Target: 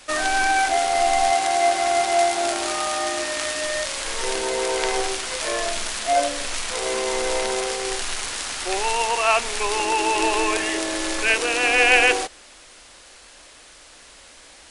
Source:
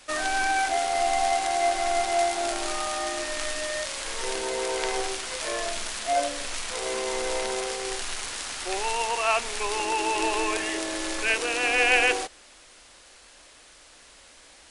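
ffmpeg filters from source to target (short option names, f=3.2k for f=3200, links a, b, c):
-filter_complex "[0:a]asettb=1/sr,asplit=3[a][b][c];[a]atrim=end=1.304[d];[b]atrim=start=1.3:end=3.65,asetpts=PTS-STARTPTS,afade=t=in:d=0.004:c=qsin,afade=t=out:st=2.346:d=0.004:c=qsin,highpass=66[e];[c]atrim=start=3.646[f];[d][e]acrossfade=d=0.004:c1=hsin:c2=qsin[g];[g][f]acrossfade=d=0.004:c1=qsin:c2=hsin,volume=5dB"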